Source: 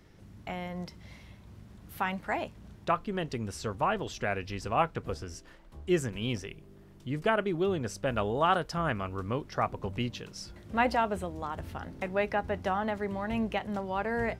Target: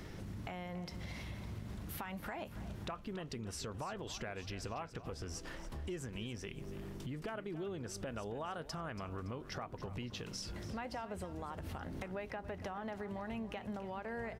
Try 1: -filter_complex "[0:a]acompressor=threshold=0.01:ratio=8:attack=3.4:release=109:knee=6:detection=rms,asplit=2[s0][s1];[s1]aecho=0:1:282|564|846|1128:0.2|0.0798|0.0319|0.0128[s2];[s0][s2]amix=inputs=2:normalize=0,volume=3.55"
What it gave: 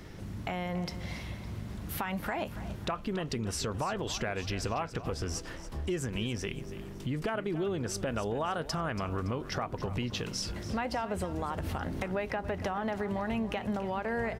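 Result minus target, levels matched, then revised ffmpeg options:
compression: peak gain reduction -9.5 dB
-filter_complex "[0:a]acompressor=threshold=0.00282:ratio=8:attack=3.4:release=109:knee=6:detection=rms,asplit=2[s0][s1];[s1]aecho=0:1:282|564|846|1128:0.2|0.0798|0.0319|0.0128[s2];[s0][s2]amix=inputs=2:normalize=0,volume=3.55"

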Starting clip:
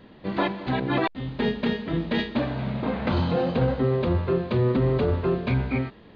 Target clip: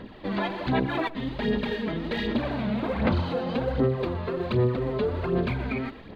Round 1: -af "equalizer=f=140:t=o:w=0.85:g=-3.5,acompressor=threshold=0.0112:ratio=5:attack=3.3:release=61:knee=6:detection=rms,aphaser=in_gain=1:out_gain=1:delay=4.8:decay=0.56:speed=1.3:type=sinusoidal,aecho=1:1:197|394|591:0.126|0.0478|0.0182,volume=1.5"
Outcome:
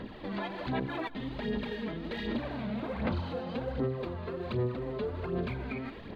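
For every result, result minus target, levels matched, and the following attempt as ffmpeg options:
echo 76 ms late; compression: peak gain reduction +8 dB
-af "equalizer=f=140:t=o:w=0.85:g=-3.5,acompressor=threshold=0.0112:ratio=5:attack=3.3:release=61:knee=6:detection=rms,aphaser=in_gain=1:out_gain=1:delay=4.8:decay=0.56:speed=1.3:type=sinusoidal,aecho=1:1:121|242|363:0.126|0.0478|0.0182,volume=1.5"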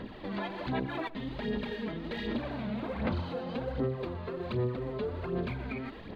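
compression: peak gain reduction +8 dB
-af "equalizer=f=140:t=o:w=0.85:g=-3.5,acompressor=threshold=0.0355:ratio=5:attack=3.3:release=61:knee=6:detection=rms,aphaser=in_gain=1:out_gain=1:delay=4.8:decay=0.56:speed=1.3:type=sinusoidal,aecho=1:1:121|242|363:0.126|0.0478|0.0182,volume=1.5"

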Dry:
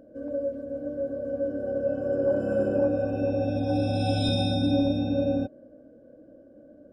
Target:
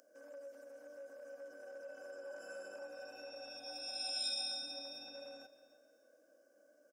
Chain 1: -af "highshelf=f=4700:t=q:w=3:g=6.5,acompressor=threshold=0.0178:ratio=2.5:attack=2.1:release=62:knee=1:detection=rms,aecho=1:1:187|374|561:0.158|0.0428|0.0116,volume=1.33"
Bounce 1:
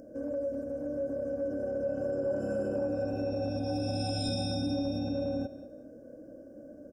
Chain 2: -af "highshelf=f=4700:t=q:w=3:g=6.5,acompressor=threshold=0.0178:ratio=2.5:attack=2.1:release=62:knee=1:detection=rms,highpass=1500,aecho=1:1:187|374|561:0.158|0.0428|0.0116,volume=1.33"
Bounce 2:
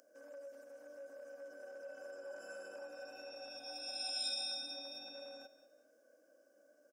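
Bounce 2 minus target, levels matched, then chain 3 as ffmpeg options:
echo 119 ms early
-af "highshelf=f=4700:t=q:w=3:g=6.5,acompressor=threshold=0.0178:ratio=2.5:attack=2.1:release=62:knee=1:detection=rms,highpass=1500,aecho=1:1:306|612|918:0.158|0.0428|0.0116,volume=1.33"

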